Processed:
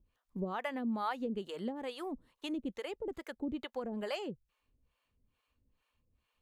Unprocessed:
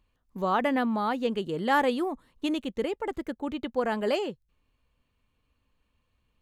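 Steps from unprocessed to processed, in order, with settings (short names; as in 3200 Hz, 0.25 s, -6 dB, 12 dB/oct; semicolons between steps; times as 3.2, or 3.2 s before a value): compressor 6:1, threshold -29 dBFS, peak gain reduction 10.5 dB; harmonic tremolo 2.3 Hz, depth 100%, crossover 520 Hz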